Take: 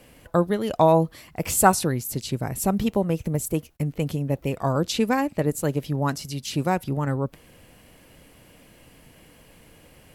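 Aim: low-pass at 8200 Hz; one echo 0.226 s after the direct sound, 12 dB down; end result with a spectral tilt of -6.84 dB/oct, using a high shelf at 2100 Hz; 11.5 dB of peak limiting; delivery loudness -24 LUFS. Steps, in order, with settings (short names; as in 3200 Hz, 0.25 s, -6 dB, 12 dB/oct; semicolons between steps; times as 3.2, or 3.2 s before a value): LPF 8200 Hz; high shelf 2100 Hz -5.5 dB; limiter -15 dBFS; echo 0.226 s -12 dB; gain +3.5 dB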